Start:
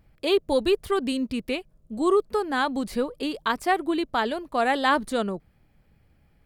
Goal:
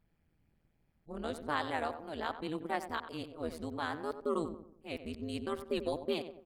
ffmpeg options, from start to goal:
ffmpeg -i in.wav -filter_complex "[0:a]areverse,asplit=2[link_01][link_02];[link_02]adelay=92,lowpass=frequency=1600:poles=1,volume=-10dB,asplit=2[link_03][link_04];[link_04]adelay=92,lowpass=frequency=1600:poles=1,volume=0.43,asplit=2[link_05][link_06];[link_06]adelay=92,lowpass=frequency=1600:poles=1,volume=0.43,asplit=2[link_07][link_08];[link_08]adelay=92,lowpass=frequency=1600:poles=1,volume=0.43,asplit=2[link_09][link_10];[link_10]adelay=92,lowpass=frequency=1600:poles=1,volume=0.43[link_11];[link_01][link_03][link_05][link_07][link_09][link_11]amix=inputs=6:normalize=0,tremolo=f=160:d=0.919,volume=-9dB" out.wav

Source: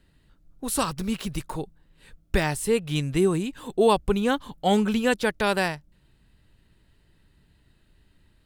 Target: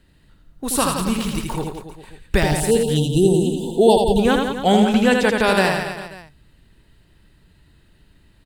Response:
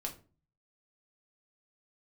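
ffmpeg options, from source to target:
-filter_complex "[0:a]asettb=1/sr,asplit=3[link_01][link_02][link_03];[link_01]atrim=end=2.434[link_04];[link_02]atrim=start=2.43:end=4.19,asetpts=PTS-STARTPTS,afade=type=in:duration=0.004:curve=qsin,afade=type=out:start_time=1.756:duration=0.004:curve=qsin,asuperstop=centerf=1600:order=20:qfactor=0.84[link_05];[link_03]atrim=start=4.186[link_06];[link_04][link_05]acrossfade=duration=0.004:curve1=hsin:curve2=qsin[link_07];[link_07][link_06]acrossfade=duration=0.004:curve1=qsin:curve2=hsin,asettb=1/sr,asplit=3[link_08][link_09][link_10];[link_08]atrim=end=4.724[link_11];[link_09]atrim=start=4.72:end=5.36,asetpts=PTS-STARTPTS,afade=type=in:duration=0.004:curve=qsin,afade=type=out:start_time=0.636:duration=0.004:curve=qsin,highshelf=frequency=11000:gain=-6.5[link_12];[link_10]atrim=start=5.356[link_13];[link_11][link_12]acrossfade=duration=0.004:curve1=hsin:curve2=qsin[link_14];[link_14][link_13]acrossfade=duration=0.004:curve1=qsin:curve2=hsin,aecho=1:1:80|172|277.8|399.5|539.4:0.631|0.398|0.251|0.158|0.1,volume=5dB"

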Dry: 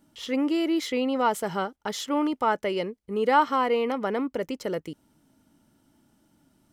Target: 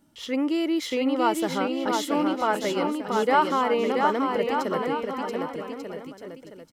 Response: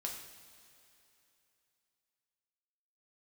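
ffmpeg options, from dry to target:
-af "aecho=1:1:680|1190|1572|1859|2075:0.631|0.398|0.251|0.158|0.1"

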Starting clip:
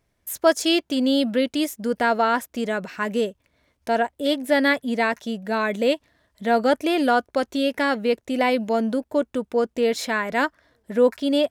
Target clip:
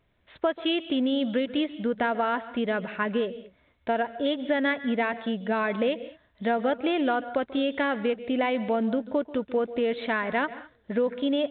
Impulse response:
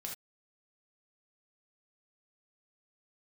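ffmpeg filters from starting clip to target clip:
-filter_complex "[0:a]acompressor=threshold=-22dB:ratio=6,asplit=2[link_01][link_02];[1:a]atrim=start_sample=2205,adelay=138[link_03];[link_02][link_03]afir=irnorm=-1:irlink=0,volume=-13dB[link_04];[link_01][link_04]amix=inputs=2:normalize=0" -ar 8000 -c:a pcm_mulaw

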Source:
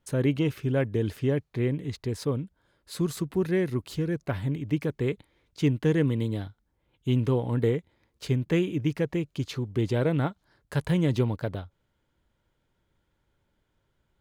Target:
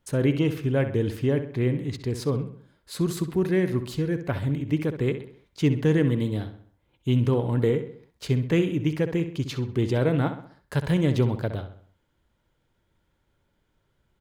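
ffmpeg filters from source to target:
ffmpeg -i in.wav -filter_complex "[0:a]asplit=2[link_01][link_02];[link_02]adelay=65,lowpass=frequency=4000:poles=1,volume=-10dB,asplit=2[link_03][link_04];[link_04]adelay=65,lowpass=frequency=4000:poles=1,volume=0.47,asplit=2[link_05][link_06];[link_06]adelay=65,lowpass=frequency=4000:poles=1,volume=0.47,asplit=2[link_07][link_08];[link_08]adelay=65,lowpass=frequency=4000:poles=1,volume=0.47,asplit=2[link_09][link_10];[link_10]adelay=65,lowpass=frequency=4000:poles=1,volume=0.47[link_11];[link_01][link_03][link_05][link_07][link_09][link_11]amix=inputs=6:normalize=0,volume=2dB" out.wav

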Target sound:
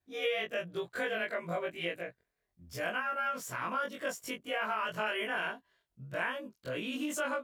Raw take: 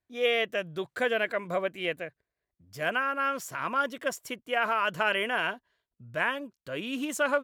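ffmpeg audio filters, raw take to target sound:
ffmpeg -i in.wav -af "afftfilt=real='re':imag='-im':win_size=2048:overlap=0.75,acompressor=threshold=-44dB:ratio=2,volume=6.5dB" out.wav

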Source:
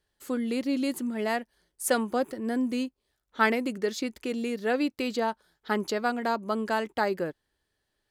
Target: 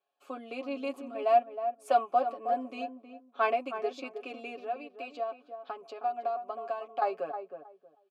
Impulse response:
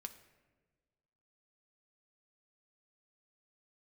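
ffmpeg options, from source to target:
-filter_complex "[0:a]highpass=180,aecho=1:1:7.2:0.81,asettb=1/sr,asplit=3[link_01][link_02][link_03];[link_01]atrim=end=4.624[link_04];[link_02]atrim=start=4.62:end=7.02,asetpts=PTS-STARTPTS,afade=type=in:duration=0.004:curve=qsin,afade=type=out:start_time=2.396:duration=0.004:curve=qsin,acompressor=threshold=-32dB:ratio=6[link_05];[link_03]atrim=start=7.016[link_06];[link_04][link_05]acrossfade=duration=0.004:curve1=hsin:curve2=qsin[link_07];[link_07][link_06]acrossfade=duration=0.004:curve1=qsin:curve2=hsin,asplit=3[link_08][link_09][link_10];[link_08]bandpass=frequency=730:width_type=q:width=8,volume=0dB[link_11];[link_09]bandpass=frequency=1090:width_type=q:width=8,volume=-6dB[link_12];[link_10]bandpass=frequency=2440:width_type=q:width=8,volume=-9dB[link_13];[link_11][link_12][link_13]amix=inputs=3:normalize=0,asplit=2[link_14][link_15];[link_15]adelay=316,lowpass=frequency=1000:poles=1,volume=-7.5dB,asplit=2[link_16][link_17];[link_17]adelay=316,lowpass=frequency=1000:poles=1,volume=0.22,asplit=2[link_18][link_19];[link_19]adelay=316,lowpass=frequency=1000:poles=1,volume=0.22[link_20];[link_14][link_16][link_18][link_20]amix=inputs=4:normalize=0,volume=7dB"

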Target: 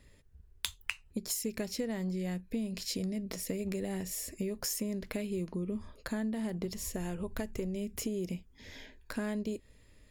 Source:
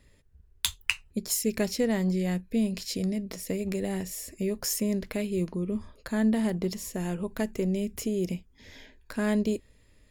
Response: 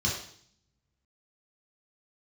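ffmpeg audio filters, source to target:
-filter_complex "[0:a]acompressor=threshold=-32dB:ratio=6,asettb=1/sr,asplit=3[link_01][link_02][link_03];[link_01]atrim=end=6.654[link_04];[link_02]atrim=start=6.65:end=7.76,asetpts=PTS-STARTPTS,afade=type=in:duration=0.004:curve=qsin,afade=type=out:start_time=1.106:duration=0.004:curve=qsin,lowshelf=frequency=130:width_type=q:width=1.5:gain=7[link_05];[link_03]atrim=start=7.756[link_06];[link_04][link_05]acrossfade=duration=0.004:curve1=hsin:curve2=qsin[link_07];[link_07][link_06]acrossfade=duration=0.004:curve1=qsin:curve2=hsin"

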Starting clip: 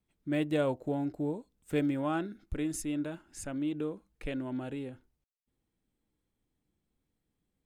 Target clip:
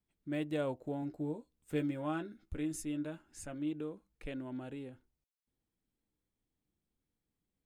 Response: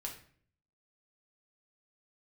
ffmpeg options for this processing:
-filter_complex "[0:a]asettb=1/sr,asplit=3[link_01][link_02][link_03];[link_01]atrim=end=1.014[link_04];[link_02]atrim=start=1.01:end=3.73,asetpts=PTS-STARTPTS,afade=type=in:duration=0.004:curve=qsin,afade=type=out:start_time=2.716:duration=0.004:curve=qsin,asplit=2[link_05][link_06];[link_06]adelay=13,volume=-7.5dB[link_07];[link_05][link_07]amix=inputs=2:normalize=0,atrim=end_sample=119952[link_08];[link_03]atrim=start=3.726[link_09];[link_04][link_08]acrossfade=duration=0.004:curve1=hsin:curve2=qsin[link_10];[link_10][link_09]acrossfade=duration=0.004:curve1=qsin:curve2=hsin,volume=-6dB"

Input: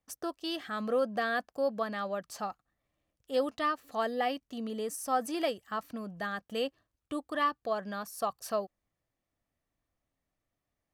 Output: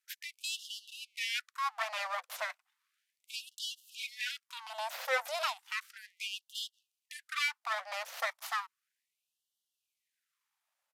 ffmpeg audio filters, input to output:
ffmpeg -i in.wav -filter_complex "[0:a]highpass=frequency=120:poles=1,asplit=2[link_01][link_02];[link_02]acompressor=threshold=-40dB:ratio=6,volume=0.5dB[link_03];[link_01][link_03]amix=inputs=2:normalize=0,aeval=exprs='abs(val(0))':channel_layout=same,aresample=32000,aresample=44100,afftfilt=real='re*gte(b*sr/1024,480*pow(2800/480,0.5+0.5*sin(2*PI*0.34*pts/sr)))':imag='im*gte(b*sr/1024,480*pow(2800/480,0.5+0.5*sin(2*PI*0.34*pts/sr)))':win_size=1024:overlap=0.75,volume=1.5dB" out.wav

